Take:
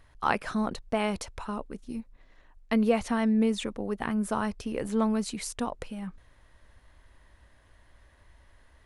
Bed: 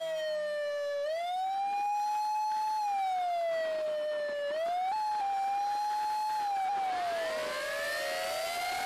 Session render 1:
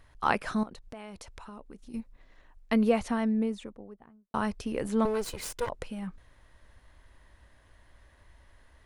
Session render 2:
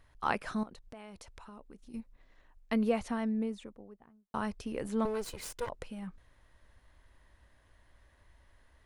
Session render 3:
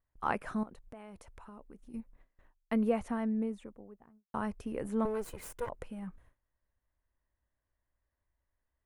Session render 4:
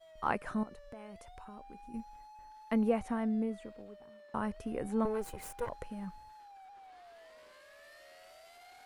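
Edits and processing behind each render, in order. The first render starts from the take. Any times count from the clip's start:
0:00.63–0:01.94: downward compressor 3 to 1, threshold −45 dBFS; 0:02.73–0:04.34: fade out and dull; 0:05.05–0:05.69: lower of the sound and its delayed copy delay 2 ms
level −5 dB
noise gate with hold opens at −50 dBFS; parametric band 4,500 Hz −12 dB 1.4 octaves
mix in bed −22.5 dB

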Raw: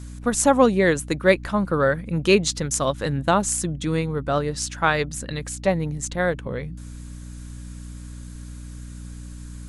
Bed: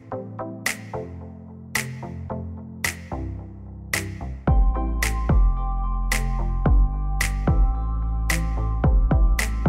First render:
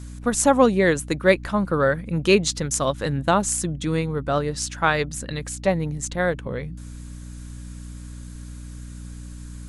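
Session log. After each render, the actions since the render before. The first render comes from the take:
no processing that can be heard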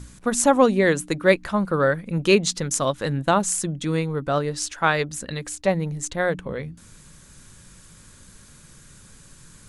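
hum removal 60 Hz, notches 5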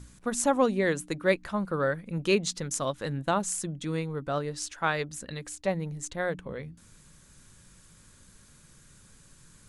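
level −7.5 dB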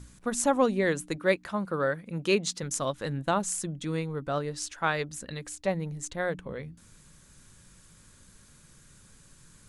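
0:01.16–0:02.63: high-pass filter 130 Hz 6 dB per octave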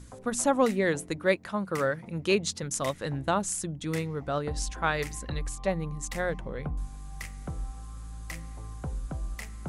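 mix in bed −16.5 dB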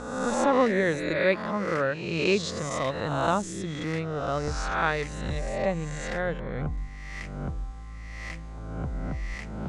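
peak hold with a rise ahead of every peak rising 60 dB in 1.14 s
high-frequency loss of the air 120 metres

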